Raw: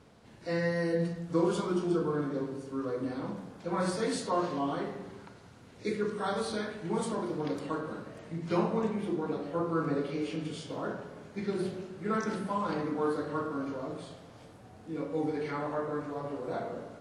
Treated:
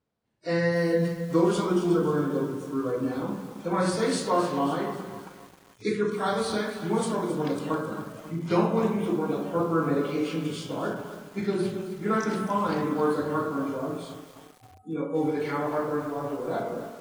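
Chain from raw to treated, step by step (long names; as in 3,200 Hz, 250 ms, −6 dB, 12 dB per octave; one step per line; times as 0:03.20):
noise reduction from a noise print of the clip's start 29 dB
feedback echo at a low word length 268 ms, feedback 55%, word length 8 bits, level −11.5 dB
level +5.5 dB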